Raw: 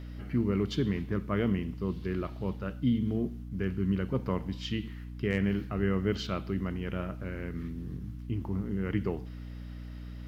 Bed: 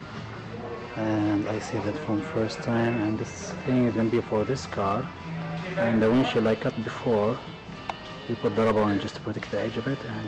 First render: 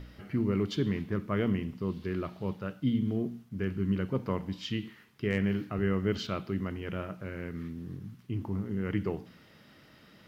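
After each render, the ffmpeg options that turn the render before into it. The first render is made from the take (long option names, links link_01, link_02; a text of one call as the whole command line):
ffmpeg -i in.wav -af "bandreject=frequency=60:width_type=h:width=4,bandreject=frequency=120:width_type=h:width=4,bandreject=frequency=180:width_type=h:width=4,bandreject=frequency=240:width_type=h:width=4,bandreject=frequency=300:width_type=h:width=4" out.wav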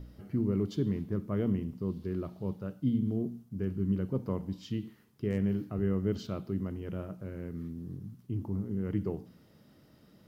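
ffmpeg -i in.wav -af "equalizer=frequency=2200:width_type=o:width=2.4:gain=-13.5" out.wav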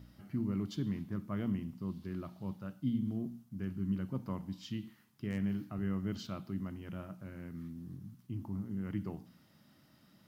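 ffmpeg -i in.wav -af "highpass=frequency=180:poles=1,equalizer=frequency=440:width=1.9:gain=-13.5" out.wav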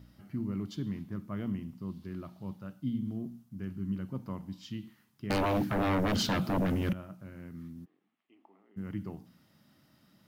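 ffmpeg -i in.wav -filter_complex "[0:a]asettb=1/sr,asplit=3[link_01][link_02][link_03];[link_01]atrim=end=5.304[link_04];[link_02]atrim=start=5.3:end=6.93,asetpts=PTS-STARTPTS,afade=type=in:duration=0.004:curve=qsin,afade=type=out:start_time=1.626:duration=0.004:curve=qsin,aeval=exprs='0.0562*sin(PI/2*5.01*val(0)/0.0562)':channel_layout=same[link_05];[link_03]atrim=start=6.926[link_06];[link_04][link_05]acrossfade=duration=0.004:curve1=hsin:curve2=qsin[link_07];[link_07][link_06]acrossfade=duration=0.004:curve1=qsin:curve2=hsin,asplit=3[link_08][link_09][link_10];[link_08]afade=type=out:start_time=7.84:duration=0.02[link_11];[link_09]highpass=frequency=490:width=0.5412,highpass=frequency=490:width=1.3066,equalizer=frequency=550:width_type=q:width=4:gain=-7,equalizer=frequency=1000:width_type=q:width=4:gain=-9,equalizer=frequency=1500:width_type=q:width=4:gain=-10,lowpass=frequency=2700:width=0.5412,lowpass=frequency=2700:width=1.3066,afade=type=in:start_time=7.84:duration=0.02,afade=type=out:start_time=8.76:duration=0.02[link_12];[link_10]afade=type=in:start_time=8.76:duration=0.02[link_13];[link_11][link_12][link_13]amix=inputs=3:normalize=0" out.wav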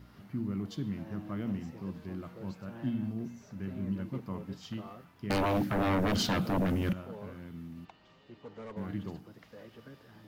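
ffmpeg -i in.wav -i bed.wav -filter_complex "[1:a]volume=-22.5dB[link_01];[0:a][link_01]amix=inputs=2:normalize=0" out.wav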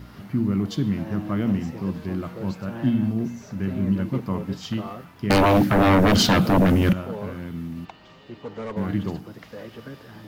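ffmpeg -i in.wav -af "volume=12dB" out.wav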